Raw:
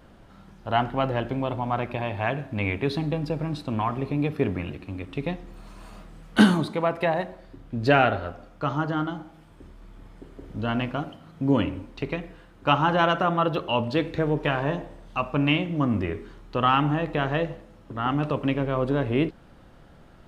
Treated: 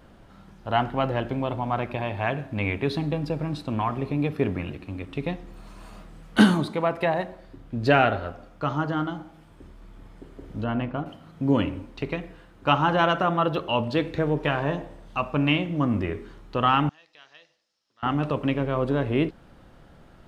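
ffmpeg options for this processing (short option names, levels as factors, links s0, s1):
-filter_complex "[0:a]asettb=1/sr,asplit=3[s0][s1][s2];[s0]atrim=end=10.644[s3];[s1]atrim=start=10.64:end=11.06,asetpts=PTS-STARTPTS,afade=t=in:d=0.004:c=qsin,afade=t=out:st=0.416:d=0.004:c=qsin,lowpass=f=1300:p=1[s4];[s2]atrim=start=11.056[s5];[s3][s4]acrossfade=d=0.004:c1=hsin:c2=qsin[s6];[s6][s5]acrossfade=d=0.004:c1=qsin:c2=hsin,asettb=1/sr,asplit=3[s7][s8][s9];[s7]atrim=end=16.894[s10];[s8]atrim=start=16.89:end=18.03,asetpts=PTS-STARTPTS,afade=t=in:d=0.004:c=qsin,afade=t=out:st=1.136:d=0.004:c=qsin,bandpass=f=5200:t=q:w=4.5[s11];[s9]atrim=start=18.026[s12];[s10][s11]acrossfade=d=0.004:c1=hsin:c2=qsin[s13];[s13][s12]acrossfade=d=0.004:c1=qsin:c2=hsin"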